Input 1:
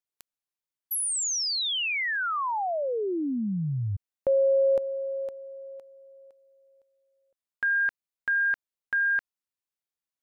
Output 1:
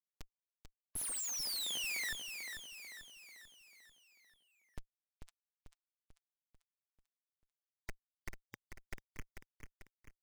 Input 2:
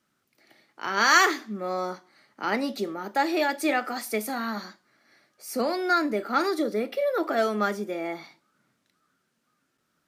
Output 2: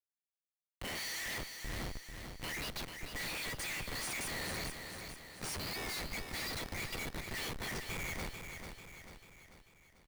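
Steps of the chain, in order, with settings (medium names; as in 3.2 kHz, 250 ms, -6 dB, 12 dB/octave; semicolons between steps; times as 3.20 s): FFT band-pass 1.8–11 kHz; ring modulator 39 Hz; comb 6.2 ms, depth 54%; Schmitt trigger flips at -45.5 dBFS; spectral noise reduction 23 dB; on a send: feedback delay 442 ms, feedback 51%, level -7 dB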